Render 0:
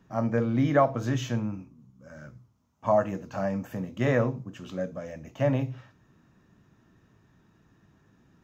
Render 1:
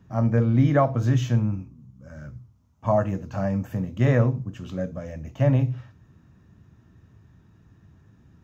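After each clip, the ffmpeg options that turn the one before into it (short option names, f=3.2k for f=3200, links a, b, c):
-af "equalizer=f=78:w=0.71:g=14"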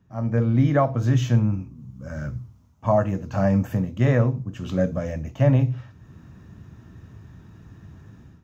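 -af "dynaudnorm=f=120:g=5:m=16dB,volume=-7dB"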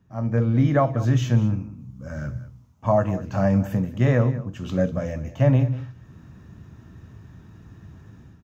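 -af "aecho=1:1:194:0.158"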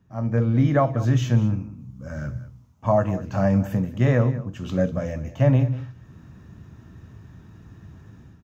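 -af anull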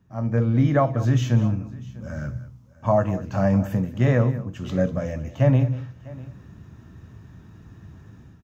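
-af "aecho=1:1:648:0.0944"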